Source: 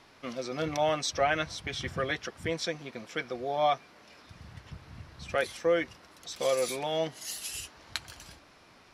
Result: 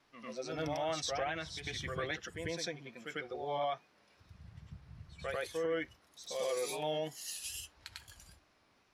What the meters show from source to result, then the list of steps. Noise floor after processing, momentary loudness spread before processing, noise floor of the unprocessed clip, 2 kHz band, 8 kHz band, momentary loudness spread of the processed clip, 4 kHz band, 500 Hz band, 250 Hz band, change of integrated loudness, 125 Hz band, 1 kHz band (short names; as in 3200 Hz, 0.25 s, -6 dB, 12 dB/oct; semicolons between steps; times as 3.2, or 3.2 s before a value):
-70 dBFS, 20 LU, -58 dBFS, -7.0 dB, -5.0 dB, 18 LU, -6.0 dB, -7.0 dB, -6.5 dB, -7.0 dB, -5.5 dB, -8.0 dB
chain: spectral noise reduction 9 dB; vibrato 2.4 Hz 70 cents; reverse echo 98 ms -6.5 dB; limiter -22 dBFS, peak gain reduction 9.5 dB; gain -5 dB